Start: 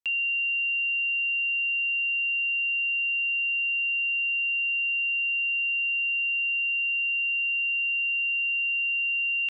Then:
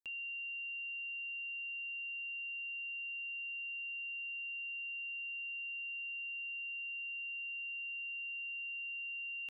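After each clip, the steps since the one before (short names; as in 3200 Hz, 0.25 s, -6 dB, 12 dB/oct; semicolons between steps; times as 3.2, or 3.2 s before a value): bell 2600 Hz -11.5 dB 2.4 oct; gain -4.5 dB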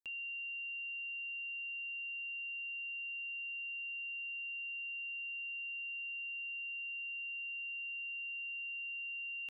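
nothing audible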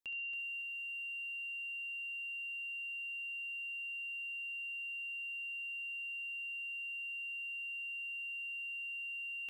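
flutter echo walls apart 11.9 m, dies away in 0.41 s; lo-fi delay 0.277 s, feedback 35%, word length 11-bit, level -8.5 dB; gain +1 dB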